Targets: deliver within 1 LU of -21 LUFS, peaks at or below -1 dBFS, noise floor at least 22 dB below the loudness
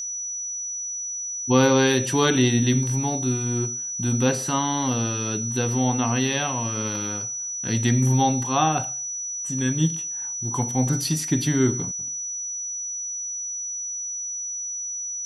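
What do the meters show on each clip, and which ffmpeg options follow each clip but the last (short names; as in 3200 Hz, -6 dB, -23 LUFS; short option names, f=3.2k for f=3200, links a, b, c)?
steady tone 5900 Hz; tone level -28 dBFS; loudness -23.5 LUFS; peak -5.5 dBFS; loudness target -21.0 LUFS
-> -af "bandreject=f=5.9k:w=30"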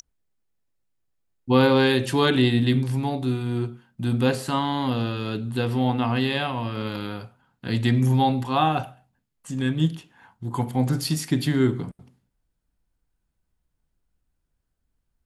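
steady tone none; loudness -23.5 LUFS; peak -6.5 dBFS; loudness target -21.0 LUFS
-> -af "volume=2.5dB"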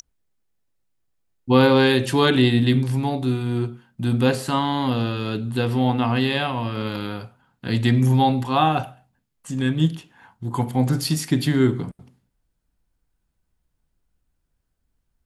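loudness -21.0 LUFS; peak -4.0 dBFS; noise floor -74 dBFS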